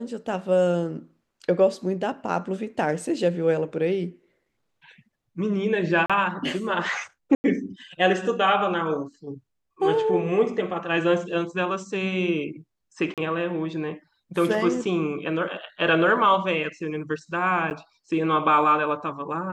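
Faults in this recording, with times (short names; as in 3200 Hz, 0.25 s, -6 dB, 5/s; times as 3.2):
6.06–6.1 gap 36 ms
7.35–7.44 gap 90 ms
13.14–13.18 gap 37 ms
17.7–17.71 gap 9.1 ms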